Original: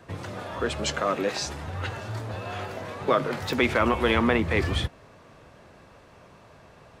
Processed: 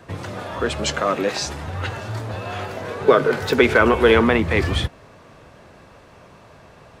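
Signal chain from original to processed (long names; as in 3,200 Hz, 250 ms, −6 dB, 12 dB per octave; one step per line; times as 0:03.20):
0:02.84–0:04.24: hollow resonant body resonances 430/1,500 Hz, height 11 dB
level +5 dB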